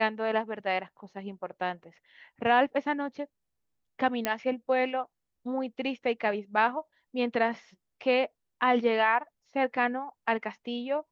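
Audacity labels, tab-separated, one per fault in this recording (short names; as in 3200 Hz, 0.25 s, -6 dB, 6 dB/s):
4.250000	4.250000	pop -12 dBFS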